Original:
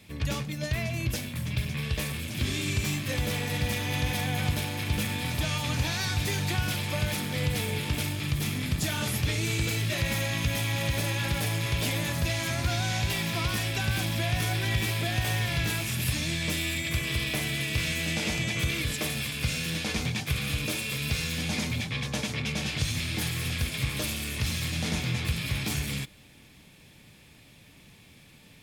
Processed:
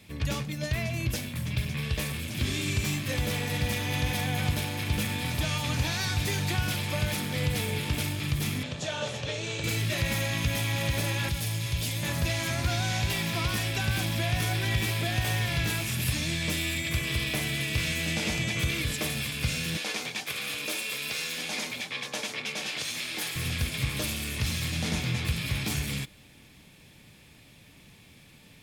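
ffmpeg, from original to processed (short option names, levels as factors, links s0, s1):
-filter_complex "[0:a]asettb=1/sr,asplit=3[s0][s1][s2];[s0]atrim=end=8.634[s3];[s1]atrim=start=8.63:end=9.64,asetpts=PTS-STARTPTS,afade=t=in:d=0.004:c=qsin,afade=t=out:st=1.006:d=0.004:c=qsin,highpass=170,equalizer=f=200:t=q:w=4:g=-9,equalizer=f=310:t=q:w=4:g=-9,equalizer=f=550:t=q:w=4:g=10,equalizer=f=1300:t=q:w=4:g=-3,equalizer=f=2100:t=q:w=4:g=-7,equalizer=f=4900:t=q:w=4:g=-7,lowpass=f=6600:w=0.5412,lowpass=f=6600:w=1.3066[s4];[s2]atrim=start=9.636[s5];[s3][s4]acrossfade=d=0.004:c1=hsin:c2=qsin[s6];[s6][s5]acrossfade=d=0.004:c1=qsin:c2=hsin,asettb=1/sr,asplit=3[s7][s8][s9];[s7]atrim=end=11.294[s10];[s8]atrim=start=11.29:end=12.03,asetpts=PTS-STARTPTS,afade=t=in:d=0.004:c=qsin,afade=t=out:st=0.736:d=0.004:c=qsin,acrossover=split=160|3000[s11][s12][s13];[s12]acompressor=threshold=0.00501:ratio=2:attack=3.2:release=140:knee=2.83:detection=peak[s14];[s11][s14][s13]amix=inputs=3:normalize=0[s15];[s9]atrim=start=12.026[s16];[s10][s15]acrossfade=d=0.004:c1=hsin:c2=qsin[s17];[s17][s16]acrossfade=d=0.004:c1=qsin:c2=hsin,asettb=1/sr,asplit=3[s18][s19][s20];[s18]atrim=end=19.774[s21];[s19]atrim=start=19.77:end=23.36,asetpts=PTS-STARTPTS,afade=t=in:d=0.004:c=qsin,afade=t=out:st=3.586:d=0.004:c=qsin,highpass=390[s22];[s20]atrim=start=23.356[s23];[s21][s22]acrossfade=d=0.004:c1=hsin:c2=qsin[s24];[s24][s23]acrossfade=d=0.004:c1=qsin:c2=hsin"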